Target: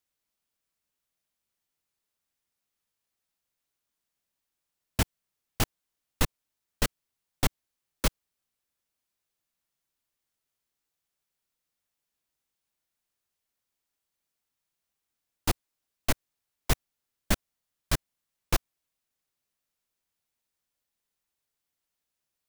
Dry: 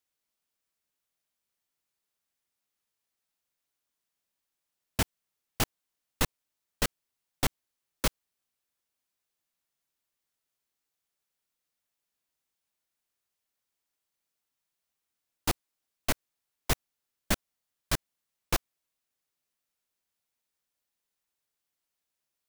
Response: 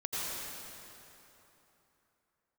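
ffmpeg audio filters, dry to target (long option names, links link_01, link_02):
-af "lowshelf=frequency=170:gain=5"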